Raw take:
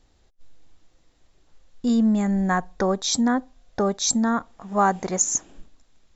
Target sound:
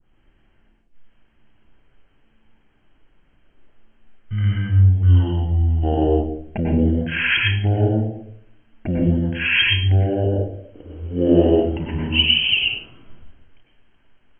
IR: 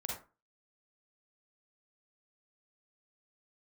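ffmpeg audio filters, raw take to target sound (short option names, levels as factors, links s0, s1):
-filter_complex "[0:a]adynamicequalizer=threshold=0.0224:dfrequency=5600:dqfactor=0.9:tfrequency=5600:tqfactor=0.9:attack=5:release=100:ratio=0.375:range=2:mode=boostabove:tftype=bell[s0];[1:a]atrim=start_sample=2205[s1];[s0][s1]afir=irnorm=-1:irlink=0,asetrate=18846,aresample=44100,volume=1.41"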